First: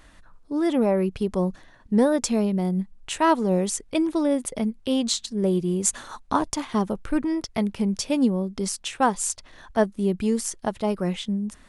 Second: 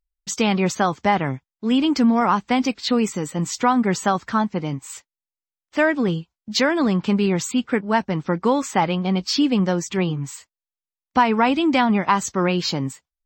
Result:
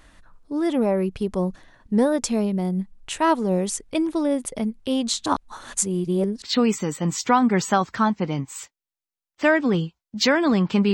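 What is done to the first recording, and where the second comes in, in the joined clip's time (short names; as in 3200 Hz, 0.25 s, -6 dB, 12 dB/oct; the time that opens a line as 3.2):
first
5.26–6.42 reverse
6.42 switch to second from 2.76 s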